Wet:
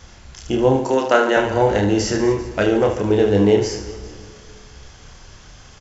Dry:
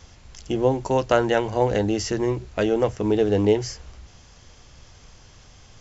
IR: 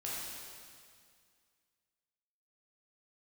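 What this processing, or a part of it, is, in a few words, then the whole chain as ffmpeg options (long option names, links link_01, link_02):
compressed reverb return: -filter_complex "[0:a]asplit=2[link_01][link_02];[1:a]atrim=start_sample=2205[link_03];[link_02][link_03]afir=irnorm=-1:irlink=0,acompressor=threshold=-25dB:ratio=6,volume=-10.5dB[link_04];[link_01][link_04]amix=inputs=2:normalize=0,asettb=1/sr,asplit=3[link_05][link_06][link_07];[link_05]atrim=end=0.764[link_08];[link_06]atrim=start=0.76:end=1.37,asetpts=PTS-STARTPTS,afade=type=in:duration=0.004:curve=qsin,afade=type=out:start_time=0.606:duration=0.004:curve=qsin,highpass=frequency=240:width=0.5412,highpass=frequency=240:width=1.3066[link_09];[link_07]atrim=start=1.366[link_10];[link_08][link_09]acrossfade=duration=0.004:curve1=hsin:curve2=qsin[link_11];[link_11][link_10]acrossfade=duration=0.004:curve1=qsin:curve2=hsin,equalizer=frequency=1500:width=2.5:gain=4,aecho=1:1:30|75|142.5|243.8|395.6:0.631|0.398|0.251|0.158|0.1,volume=2dB"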